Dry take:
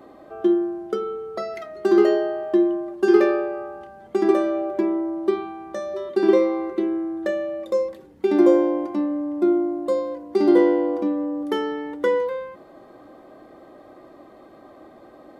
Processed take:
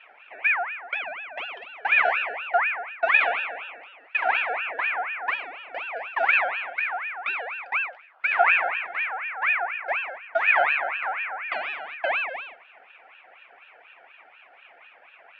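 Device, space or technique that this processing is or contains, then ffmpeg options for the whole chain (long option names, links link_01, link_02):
voice changer toy: -filter_complex "[0:a]aeval=exprs='val(0)*sin(2*PI*1600*n/s+1600*0.35/4.1*sin(2*PI*4.1*n/s))':channel_layout=same,highpass=530,equalizer=frequency=700:width_type=q:width=4:gain=7,equalizer=frequency=1000:width_type=q:width=4:gain=-4,equalizer=frequency=1700:width_type=q:width=4:gain=-3,equalizer=frequency=2500:width_type=q:width=4:gain=5,lowpass=frequency=3500:width=0.5412,lowpass=frequency=3500:width=1.3066,asettb=1/sr,asplit=3[link_01][link_02][link_03];[link_01]atrim=end=4.494[link_04];[link_02]atrim=start=4.49:end=6.26,asetpts=PTS-STARTPTS,afade=type=in:duration=0.004:curve=qsin,afade=type=out:start_time=1.766:duration=0.004:curve=qsin,equalizer=frequency=370:width_type=o:width=2.4:gain=3.5[link_05];[link_03]atrim=start=6.256[link_06];[link_04][link_05]acrossfade=duration=0.004:curve1=hsin:curve2=qsin[link_07];[link_07][link_06]acrossfade=duration=0.004:curve1=qsin:curve2=hsin,volume=-3dB"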